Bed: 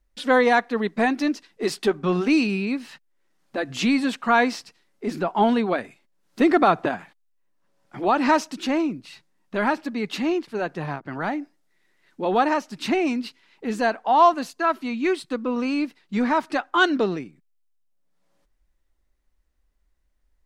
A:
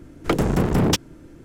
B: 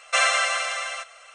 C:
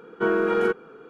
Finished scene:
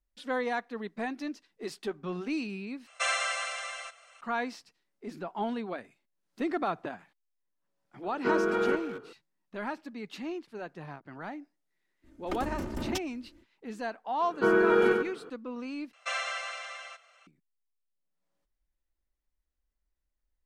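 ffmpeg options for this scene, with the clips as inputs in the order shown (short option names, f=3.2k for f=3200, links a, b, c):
-filter_complex "[2:a]asplit=2[a][b];[3:a]asplit=2[c][d];[0:a]volume=-13.5dB[e];[c]asplit=2[f][g];[g]adelay=220,highpass=300,lowpass=3.4k,asoftclip=type=hard:threshold=-21.5dB,volume=-10dB[h];[f][h]amix=inputs=2:normalize=0[i];[1:a]aecho=1:1:3.3:0.8[j];[d]aecho=1:1:95|190|285:0.596|0.0953|0.0152[k];[b]acrossover=split=230 7000:gain=0.178 1 0.126[l][m][n];[l][m][n]amix=inputs=3:normalize=0[o];[e]asplit=3[p][q][r];[p]atrim=end=2.874[s];[a]atrim=end=1.34,asetpts=PTS-STARTPTS,volume=-9dB[t];[q]atrim=start=4.206:end=15.934[u];[o]atrim=end=1.34,asetpts=PTS-STARTPTS,volume=-12.5dB[v];[r]atrim=start=17.266[w];[i]atrim=end=1.09,asetpts=PTS-STARTPTS,volume=-5dB,afade=t=in:d=0.004:c=hsin,afade=t=out:st=1.086:d=0.004:c=hsin,adelay=8040[x];[j]atrim=end=1.44,asetpts=PTS-STARTPTS,volume=-17dB,afade=t=in:d=0.05,afade=t=out:st=1.39:d=0.05,adelay=12020[y];[k]atrim=end=1.09,asetpts=PTS-STARTPTS,volume=-1.5dB,afade=t=in:d=0.004:c=hsin,afade=t=out:st=1.086:d=0.004:c=hsin,adelay=14210[z];[s][t]acrossfade=d=0.004:c1=hsin:c2=hsin[aa];[aa][u]acrossfade=d=0.004:c1=hsin:c2=hsin[ab];[ab][v]acrossfade=d=0.004:c1=hsin:c2=hsin[ac];[ac][w]acrossfade=d=0.004:c1=hsin:c2=hsin[ad];[ad][x][y][z]amix=inputs=4:normalize=0"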